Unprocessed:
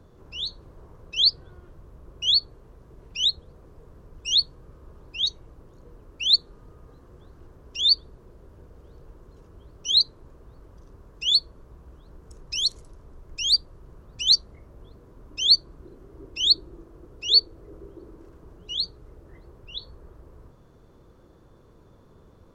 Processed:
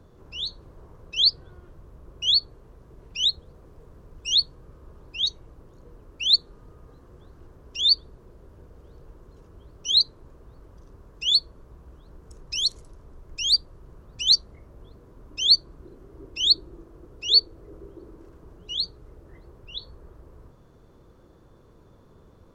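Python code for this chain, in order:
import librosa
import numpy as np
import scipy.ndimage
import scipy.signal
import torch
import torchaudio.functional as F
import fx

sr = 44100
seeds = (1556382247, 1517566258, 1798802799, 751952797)

y = fx.dmg_crackle(x, sr, seeds[0], per_s=330.0, level_db=-64.0, at=(3.3, 4.27), fade=0.02)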